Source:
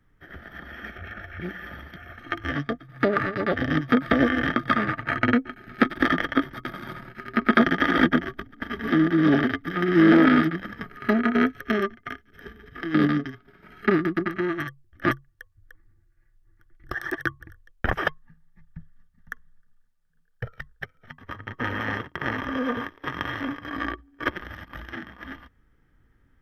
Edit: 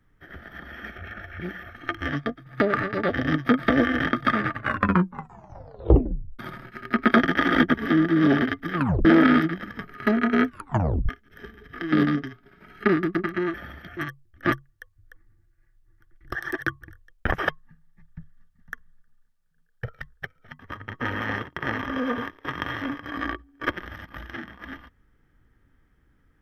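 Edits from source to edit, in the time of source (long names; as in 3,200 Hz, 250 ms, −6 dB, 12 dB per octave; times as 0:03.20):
0:01.63–0:02.06: move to 0:14.56
0:04.94: tape stop 1.88 s
0:08.17–0:08.76: remove
0:09.78: tape stop 0.29 s
0:11.48: tape stop 0.63 s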